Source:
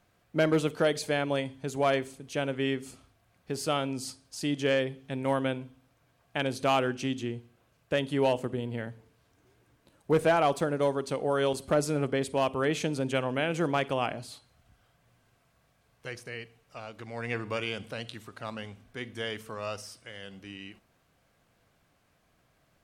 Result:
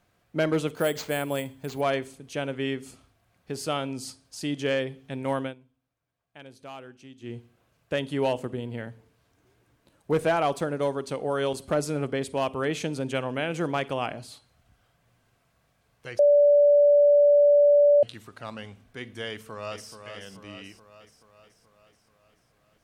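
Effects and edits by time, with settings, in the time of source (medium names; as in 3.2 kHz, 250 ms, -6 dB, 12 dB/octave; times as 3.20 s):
0.75–1.81 s: careless resampling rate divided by 4×, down none, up hold
5.41–7.34 s: dip -16.5 dB, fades 0.14 s
16.19–18.03 s: bleep 580 Hz -14 dBFS
19.28–19.93 s: echo throw 430 ms, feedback 60%, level -8 dB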